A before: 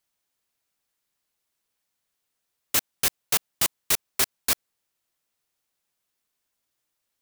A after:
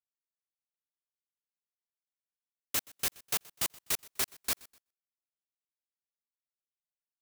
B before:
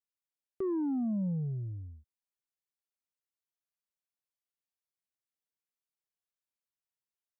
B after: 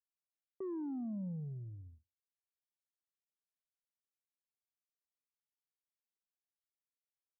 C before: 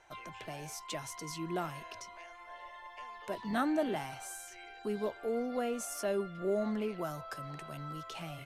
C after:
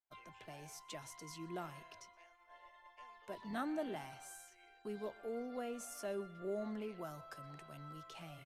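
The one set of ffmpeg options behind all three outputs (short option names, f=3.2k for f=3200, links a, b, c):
-af "aecho=1:1:125|250|375:0.0708|0.029|0.0119,agate=range=-33dB:threshold=-45dB:ratio=3:detection=peak,volume=-8.5dB"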